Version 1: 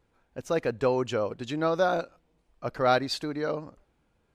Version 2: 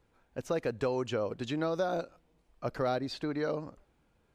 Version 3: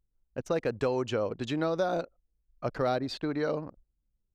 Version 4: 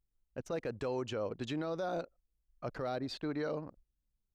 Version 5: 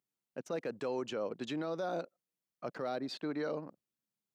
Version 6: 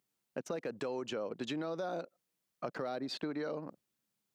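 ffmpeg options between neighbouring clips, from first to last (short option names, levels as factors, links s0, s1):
-filter_complex "[0:a]acrossover=split=670|4200[s0][s1][s2];[s0]acompressor=threshold=0.0316:ratio=4[s3];[s1]acompressor=threshold=0.0112:ratio=4[s4];[s2]acompressor=threshold=0.00251:ratio=4[s5];[s3][s4][s5]amix=inputs=3:normalize=0"
-af "anlmdn=0.0158,volume=1.33"
-af "alimiter=limit=0.0708:level=0:latency=1:release=15,volume=0.562"
-af "highpass=f=160:w=0.5412,highpass=f=160:w=1.3066"
-af "acompressor=threshold=0.00794:ratio=6,volume=2.24"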